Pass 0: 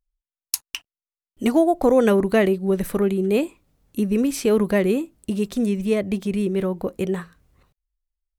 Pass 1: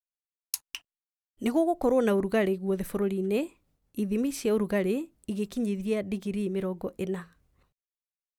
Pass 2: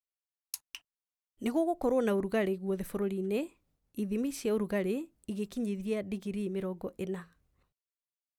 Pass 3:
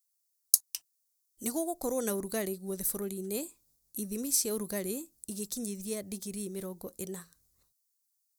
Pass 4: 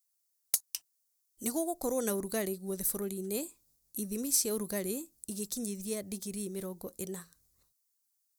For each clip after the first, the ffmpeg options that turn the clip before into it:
-af "agate=range=-33dB:threshold=-57dB:ratio=3:detection=peak,volume=-7.5dB"
-af "dynaudnorm=f=150:g=11:m=3.5dB,volume=-8dB"
-af "aexciter=amount=8.1:drive=6.6:freq=4.2k,volume=-4.5dB"
-af "volume=17dB,asoftclip=hard,volume=-17dB"

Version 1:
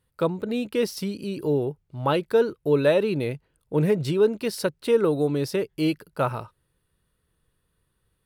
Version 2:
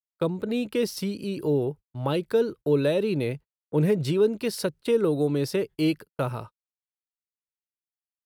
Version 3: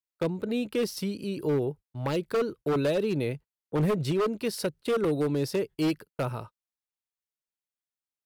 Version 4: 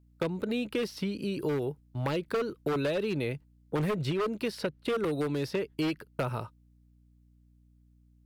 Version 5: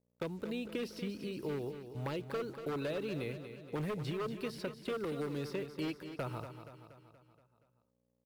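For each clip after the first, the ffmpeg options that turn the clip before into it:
-filter_complex "[0:a]agate=range=-51dB:threshold=-38dB:ratio=16:detection=peak,acrossover=split=480|3000[a][b][c];[b]acompressor=threshold=-30dB:ratio=6[d];[a][d][c]amix=inputs=3:normalize=0"
-af "aeval=exprs='0.126*(abs(mod(val(0)/0.126+3,4)-2)-1)':c=same,volume=-2dB"
-filter_complex "[0:a]acrossover=split=1100|3900[a][b][c];[a]acompressor=threshold=-32dB:ratio=4[d];[b]acompressor=threshold=-39dB:ratio=4[e];[c]acompressor=threshold=-56dB:ratio=4[f];[d][e][f]amix=inputs=3:normalize=0,aeval=exprs='val(0)+0.000708*(sin(2*PI*60*n/s)+sin(2*PI*2*60*n/s)/2+sin(2*PI*3*60*n/s)/3+sin(2*PI*4*60*n/s)/4+sin(2*PI*5*60*n/s)/5)':c=same,volume=3dB"
-af "acrusher=bits=8:mix=0:aa=0.5,aecho=1:1:237|474|711|948|1185|1422:0.316|0.174|0.0957|0.0526|0.0289|0.0159,volume=-8dB"

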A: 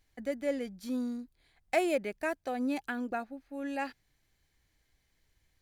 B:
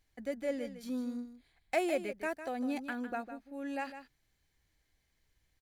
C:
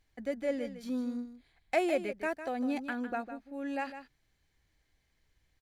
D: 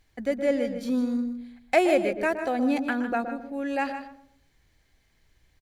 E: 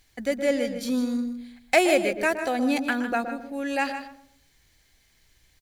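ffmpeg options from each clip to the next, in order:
-af "aecho=1:1:154:0.282,volume=-3dB"
-af "highshelf=f=7.9k:g=-8.5,volume=2.5dB"
-filter_complex "[0:a]asplit=2[a][b];[b]adelay=120,lowpass=f=840:p=1,volume=-7dB,asplit=2[c][d];[d]adelay=120,lowpass=f=840:p=1,volume=0.38,asplit=2[e][f];[f]adelay=120,lowpass=f=840:p=1,volume=0.38,asplit=2[g][h];[h]adelay=120,lowpass=f=840:p=1,volume=0.38[i];[a][c][e][g][i]amix=inputs=5:normalize=0,volume=8dB"
-af "highshelf=f=2.5k:g=11"

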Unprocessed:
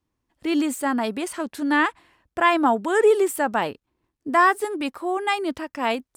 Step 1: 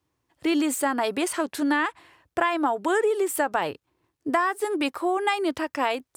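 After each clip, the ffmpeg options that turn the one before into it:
-af "highpass=85,equalizer=f=220:t=o:w=0.31:g=-14.5,acompressor=threshold=-24dB:ratio=12,volume=4.5dB"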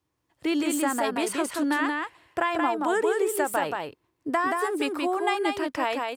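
-af "aecho=1:1:178:0.668,volume=-2.5dB"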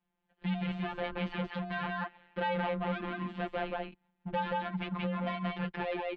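-af "volume=28dB,asoftclip=hard,volume=-28dB,afftfilt=real='hypot(re,im)*cos(PI*b)':imag='0':win_size=1024:overlap=0.75,highpass=f=170:t=q:w=0.5412,highpass=f=170:t=q:w=1.307,lowpass=f=3.6k:t=q:w=0.5176,lowpass=f=3.6k:t=q:w=0.7071,lowpass=f=3.6k:t=q:w=1.932,afreqshift=-160"

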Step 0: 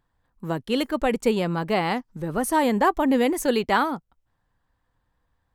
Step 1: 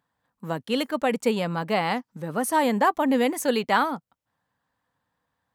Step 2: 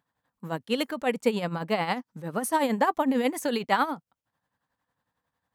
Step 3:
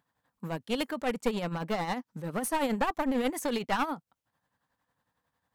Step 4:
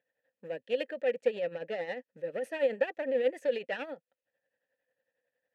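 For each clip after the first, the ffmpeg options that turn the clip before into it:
-af "highpass=160,equalizer=f=360:t=o:w=0.3:g=-9.5"
-af "tremolo=f=11:d=0.64"
-filter_complex "[0:a]asplit=2[a][b];[b]acompressor=threshold=-35dB:ratio=6,volume=-1.5dB[c];[a][c]amix=inputs=2:normalize=0,aeval=exprs='clip(val(0),-1,0.0531)':c=same,volume=-4dB"
-filter_complex "[0:a]asplit=3[a][b][c];[a]bandpass=f=530:t=q:w=8,volume=0dB[d];[b]bandpass=f=1.84k:t=q:w=8,volume=-6dB[e];[c]bandpass=f=2.48k:t=q:w=8,volume=-9dB[f];[d][e][f]amix=inputs=3:normalize=0,volume=8dB"

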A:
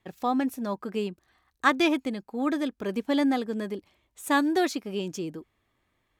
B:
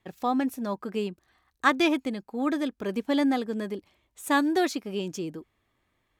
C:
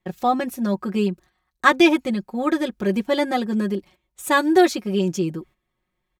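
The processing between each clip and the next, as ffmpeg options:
-af anull
-af "agate=range=-12dB:threshold=-54dB:ratio=16:detection=peak,lowshelf=f=200:g=6.5,aecho=1:1:5.5:0.84,volume=4dB"

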